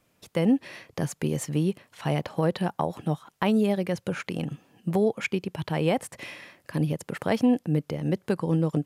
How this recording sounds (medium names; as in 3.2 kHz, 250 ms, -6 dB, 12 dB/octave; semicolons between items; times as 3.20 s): noise floor -69 dBFS; spectral tilt -6.0 dB/octave